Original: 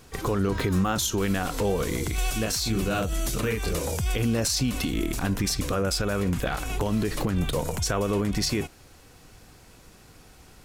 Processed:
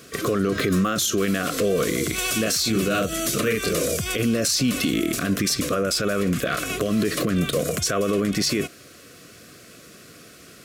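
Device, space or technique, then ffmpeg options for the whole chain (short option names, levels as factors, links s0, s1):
PA system with an anti-feedback notch: -af "highpass=170,asuperstop=centerf=870:order=8:qfactor=2.4,alimiter=limit=0.0891:level=0:latency=1:release=33,volume=2.51"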